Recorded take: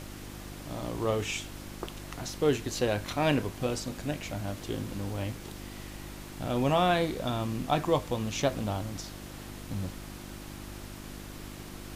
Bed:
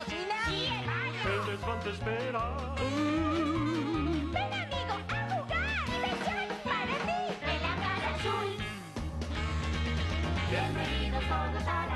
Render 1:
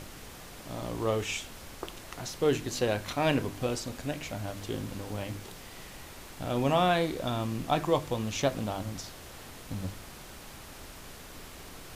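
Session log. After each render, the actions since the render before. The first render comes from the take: de-hum 50 Hz, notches 7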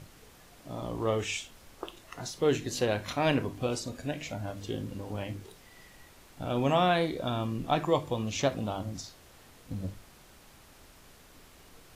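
noise print and reduce 9 dB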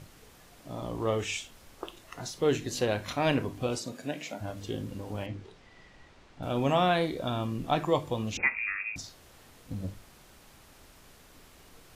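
3.78–4.4 HPF 110 Hz -> 220 Hz 24 dB/oct; 5.26–6.43 air absorption 120 m; 8.37–8.96 inverted band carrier 2600 Hz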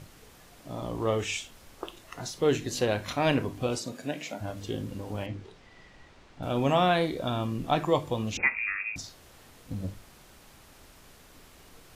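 gain +1.5 dB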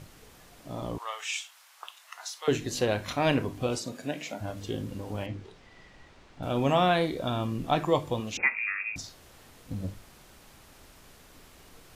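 0.98–2.48 HPF 890 Hz 24 dB/oct; 8.2–8.87 low shelf 190 Hz -10 dB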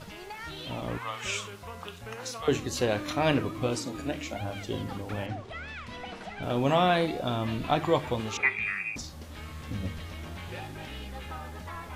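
add bed -8.5 dB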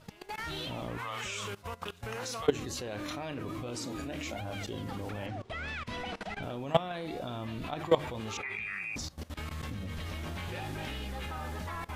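in parallel at -3 dB: limiter -20.5 dBFS, peak gain reduction 8.5 dB; on the sum: level quantiser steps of 19 dB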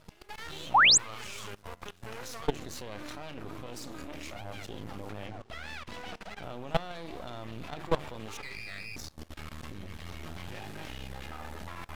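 half-wave rectifier; 0.74–0.98 painted sound rise 700–8600 Hz -19 dBFS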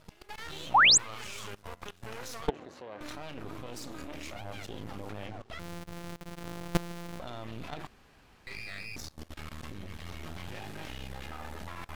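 2.49–3.01 band-pass 680 Hz, Q 0.68; 5.59–7.2 sample sorter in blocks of 256 samples; 7.87–8.47 room tone

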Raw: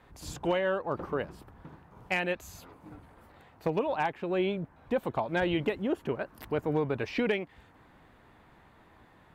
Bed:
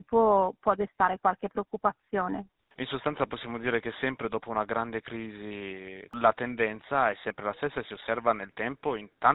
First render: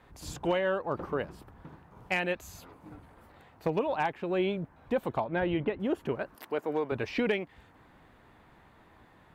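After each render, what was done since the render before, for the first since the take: 5.24–5.8 air absorption 340 m; 6.35–6.92 HPF 330 Hz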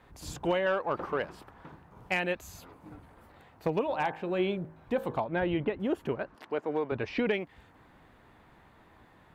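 0.66–1.72 overdrive pedal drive 10 dB, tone 5000 Hz, clips at -18 dBFS; 3.84–5.2 de-hum 53.59 Hz, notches 33; 6.14–7.34 air absorption 83 m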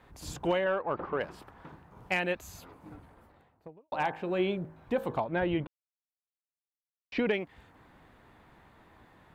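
0.64–1.21 air absorption 290 m; 2.91–3.92 studio fade out; 5.67–7.12 mute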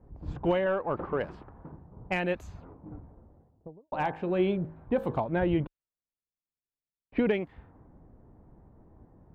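low-pass opened by the level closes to 520 Hz, open at -29 dBFS; tilt -2 dB/oct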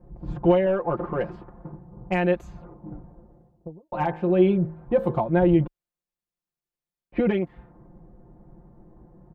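tilt shelf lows +3.5 dB, about 1300 Hz; comb 5.7 ms, depth 93%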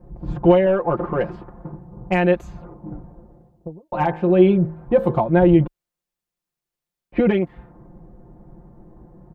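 gain +5 dB

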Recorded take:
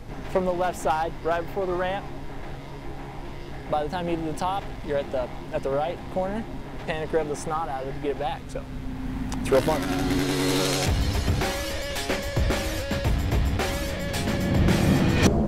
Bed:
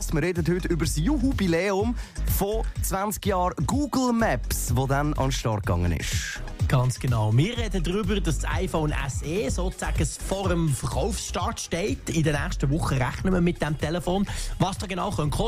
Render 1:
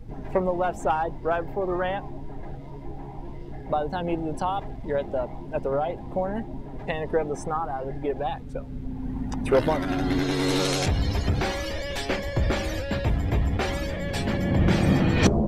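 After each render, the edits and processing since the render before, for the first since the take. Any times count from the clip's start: denoiser 14 dB, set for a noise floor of -37 dBFS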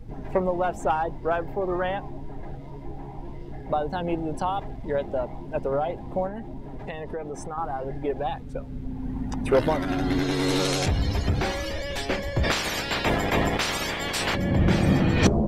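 6.27–7.58 compressor 3:1, threshold -31 dBFS; 12.43–14.34 spectral limiter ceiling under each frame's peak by 24 dB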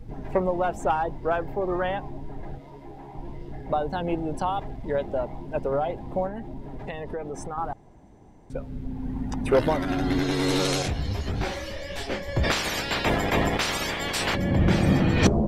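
2.58–3.15 low shelf 210 Hz -10.5 dB; 7.73–8.5 room tone; 10.82–12.29 detuned doubles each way 58 cents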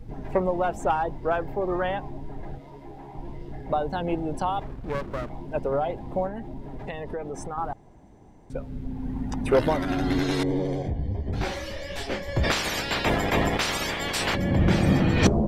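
4.66–5.3 running maximum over 33 samples; 10.43–11.33 running mean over 33 samples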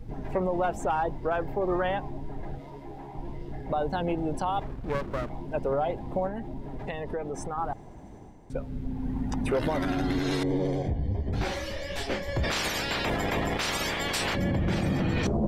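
limiter -19 dBFS, peak gain reduction 11 dB; reverse; upward compressor, threshold -37 dBFS; reverse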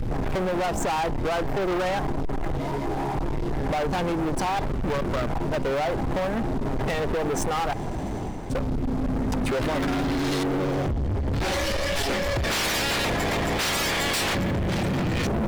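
compressor, threshold -31 dBFS, peak gain reduction 8.5 dB; sample leveller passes 5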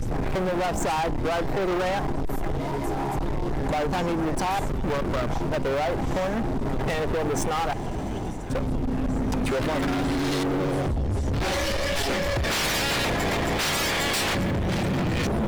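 add bed -16.5 dB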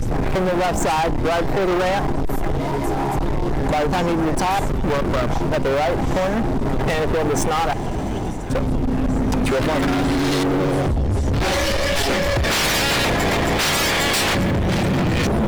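gain +6 dB

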